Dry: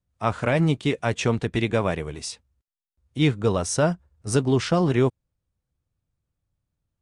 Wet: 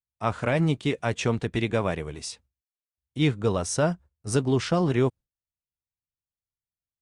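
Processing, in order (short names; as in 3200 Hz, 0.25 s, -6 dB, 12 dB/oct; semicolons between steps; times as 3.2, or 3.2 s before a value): gate with hold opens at -51 dBFS; gain -2.5 dB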